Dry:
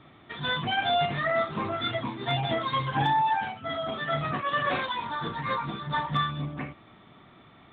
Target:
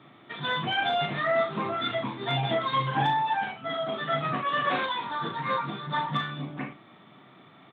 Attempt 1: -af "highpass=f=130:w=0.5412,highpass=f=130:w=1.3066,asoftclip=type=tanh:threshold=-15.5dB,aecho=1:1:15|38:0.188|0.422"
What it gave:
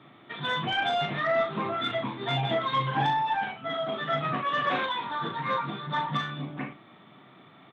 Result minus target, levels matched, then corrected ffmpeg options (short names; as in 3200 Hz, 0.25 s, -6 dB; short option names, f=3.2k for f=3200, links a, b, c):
soft clip: distortion +13 dB
-af "highpass=f=130:w=0.5412,highpass=f=130:w=1.3066,asoftclip=type=tanh:threshold=-8.5dB,aecho=1:1:15|38:0.188|0.422"